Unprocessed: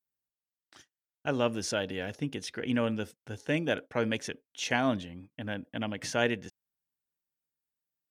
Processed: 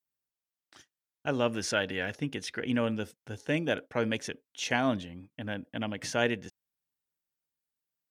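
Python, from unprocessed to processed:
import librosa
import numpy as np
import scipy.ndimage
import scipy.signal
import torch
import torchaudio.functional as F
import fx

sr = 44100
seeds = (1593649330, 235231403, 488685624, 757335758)

y = fx.dynamic_eq(x, sr, hz=1800.0, q=1.0, threshold_db=-48.0, ratio=4.0, max_db=7, at=(1.52, 2.59), fade=0.02)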